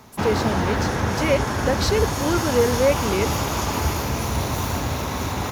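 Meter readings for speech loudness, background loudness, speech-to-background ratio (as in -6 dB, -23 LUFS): -24.0 LUFS, -24.0 LUFS, 0.0 dB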